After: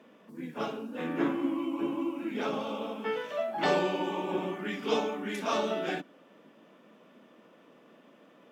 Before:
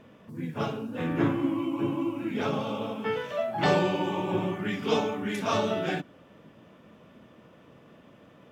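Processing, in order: HPF 210 Hz 24 dB/oct; gain -2.5 dB

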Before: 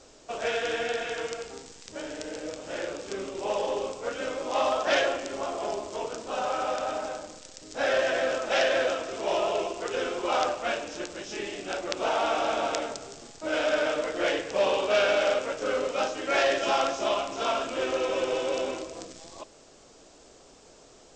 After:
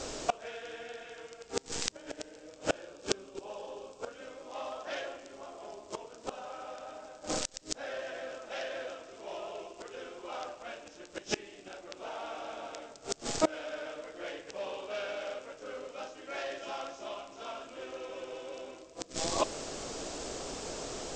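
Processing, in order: 2.7–4.14 notch 2000 Hz, Q 5.9; flipped gate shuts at -27 dBFS, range -28 dB; gain +13.5 dB

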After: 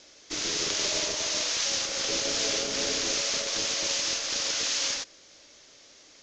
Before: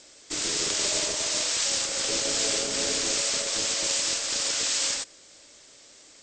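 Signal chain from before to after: elliptic low-pass 6500 Hz, stop band 40 dB

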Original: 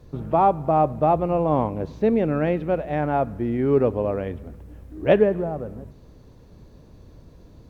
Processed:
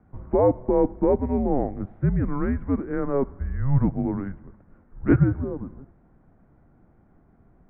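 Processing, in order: Chebyshev high-pass 160 Hz; mistuned SSB -280 Hz 250–2100 Hz

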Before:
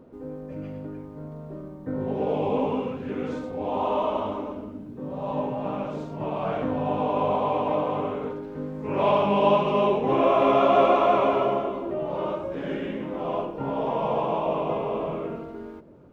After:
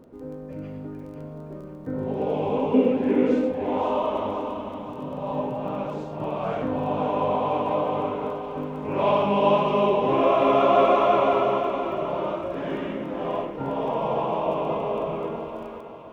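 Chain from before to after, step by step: 2.74–3.52 graphic EQ 125/250/500/1000/2000 Hz -7/+11/+9/-7/+8 dB; thinning echo 0.517 s, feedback 49%, high-pass 420 Hz, level -7 dB; crackle 11/s -42 dBFS

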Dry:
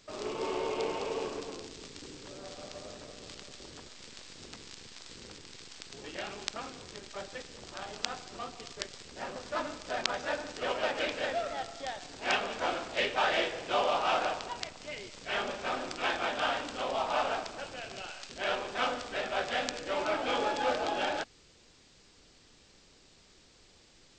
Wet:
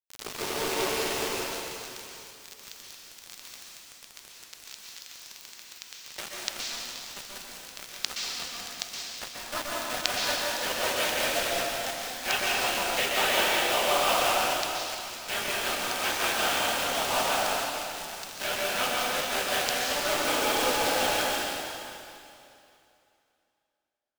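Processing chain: high shelf 2700 Hz +8.5 dB; bit-crush 5-bit; plate-style reverb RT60 2.7 s, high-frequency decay 0.95×, pre-delay 0.11 s, DRR -4 dB; gain -2.5 dB

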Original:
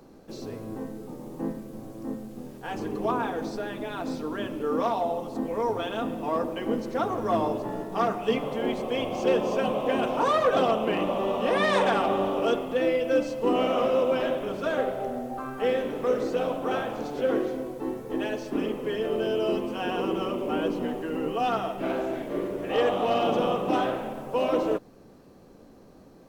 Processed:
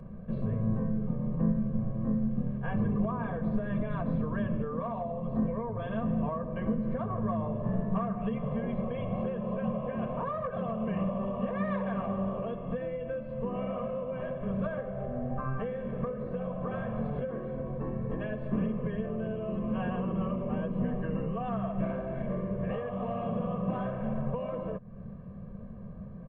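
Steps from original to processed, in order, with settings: Gaussian blur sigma 4.1 samples; comb 1.8 ms, depth 90%; compressor, threshold -31 dBFS, peak gain reduction 16.5 dB; resonant low shelf 280 Hz +9 dB, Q 3

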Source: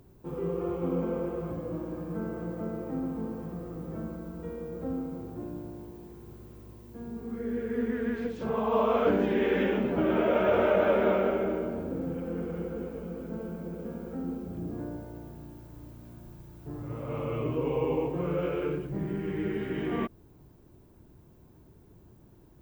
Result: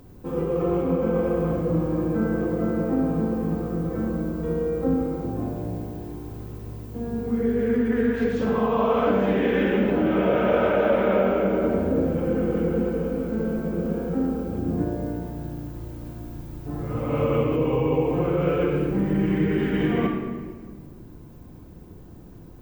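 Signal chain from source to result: in parallel at -1 dB: negative-ratio compressor -32 dBFS, ratio -0.5; on the sum: shoebox room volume 2000 m³, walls mixed, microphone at 2 m

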